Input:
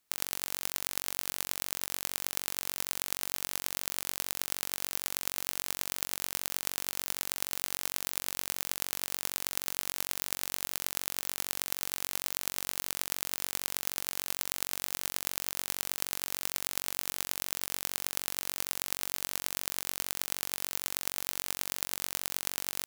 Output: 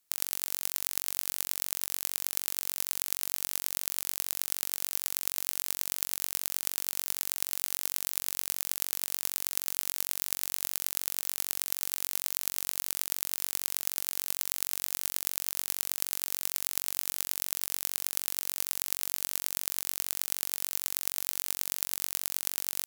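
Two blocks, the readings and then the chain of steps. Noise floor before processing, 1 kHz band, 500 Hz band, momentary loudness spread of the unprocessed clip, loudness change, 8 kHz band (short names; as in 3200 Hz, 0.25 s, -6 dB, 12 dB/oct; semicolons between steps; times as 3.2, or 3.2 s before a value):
-76 dBFS, -4.0 dB, -4.5 dB, 1 LU, +2.5 dB, +2.5 dB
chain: bell 15000 Hz +8.5 dB 2 oct; gain -4.5 dB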